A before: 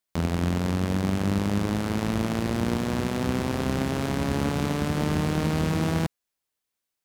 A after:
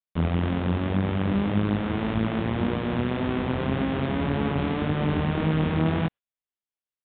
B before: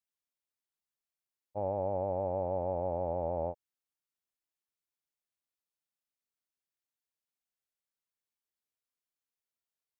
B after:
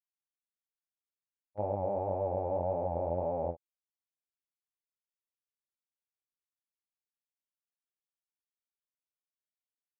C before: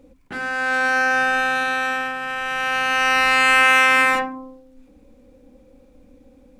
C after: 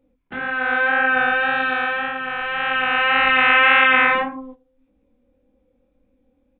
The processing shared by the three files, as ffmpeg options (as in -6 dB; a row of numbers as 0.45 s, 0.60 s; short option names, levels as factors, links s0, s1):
-af "flanger=delay=18.5:depth=6.7:speed=1.8,aresample=8000,aresample=44100,agate=range=0.2:threshold=0.00891:ratio=16:detection=peak,volume=1.5"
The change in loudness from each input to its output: +0.5 LU, +0.5 LU, +0.5 LU